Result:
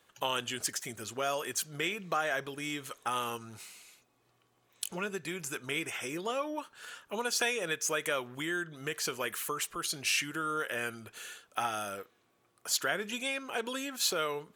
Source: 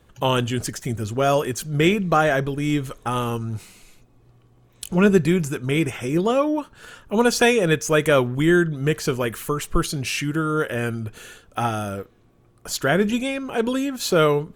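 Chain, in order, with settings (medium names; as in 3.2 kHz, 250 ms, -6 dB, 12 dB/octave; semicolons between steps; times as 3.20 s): compression 6:1, threshold -20 dBFS, peak gain reduction 10 dB; high-pass 1.3 kHz 6 dB/octave; trim -2 dB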